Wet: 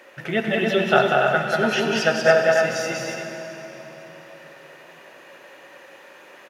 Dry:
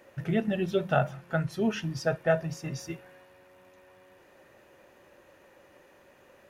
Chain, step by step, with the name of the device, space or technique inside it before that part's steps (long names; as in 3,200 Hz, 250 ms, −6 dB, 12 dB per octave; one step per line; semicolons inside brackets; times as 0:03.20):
stadium PA (high-pass filter 250 Hz 12 dB per octave; parametric band 2,500 Hz +8 dB 2.9 octaves; loudspeakers that aren't time-aligned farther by 65 metres −3 dB, 98 metres −5 dB; convolution reverb RT60 3.7 s, pre-delay 62 ms, DRR 5.5 dB)
level +4.5 dB